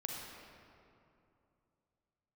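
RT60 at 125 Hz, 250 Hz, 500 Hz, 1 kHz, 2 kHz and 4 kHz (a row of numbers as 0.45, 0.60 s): 3.4, 3.0, 2.8, 2.6, 2.0, 1.5 s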